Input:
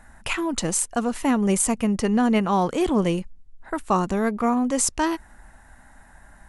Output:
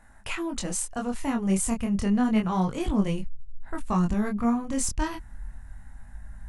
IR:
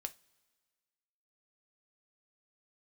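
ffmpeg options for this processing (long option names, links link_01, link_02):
-af "asubboost=boost=7:cutoff=160,acontrast=26,flanger=delay=19.5:depth=6.8:speed=0.31,volume=-8dB"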